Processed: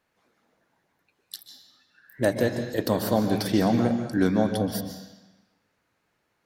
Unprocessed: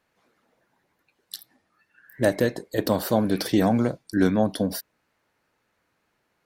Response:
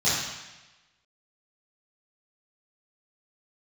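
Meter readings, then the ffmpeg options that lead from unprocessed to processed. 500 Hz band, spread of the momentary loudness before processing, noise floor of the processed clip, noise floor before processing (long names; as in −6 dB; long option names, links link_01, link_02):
−1.0 dB, 18 LU, −74 dBFS, −73 dBFS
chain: -filter_complex "[0:a]asplit=2[link_01][link_02];[1:a]atrim=start_sample=2205,adelay=123[link_03];[link_02][link_03]afir=irnorm=-1:irlink=0,volume=-21dB[link_04];[link_01][link_04]amix=inputs=2:normalize=0,volume=-2dB"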